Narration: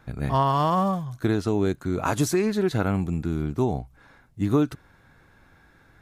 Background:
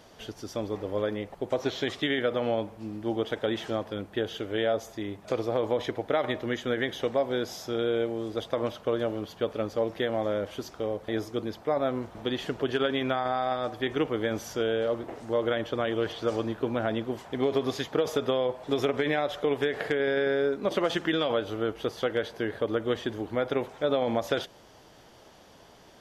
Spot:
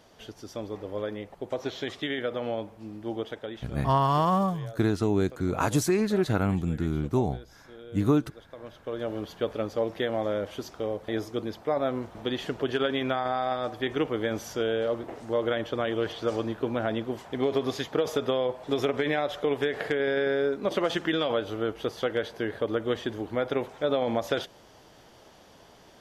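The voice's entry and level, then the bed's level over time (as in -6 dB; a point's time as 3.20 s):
3.55 s, -1.5 dB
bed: 3.20 s -3.5 dB
3.94 s -18 dB
8.47 s -18 dB
9.17 s 0 dB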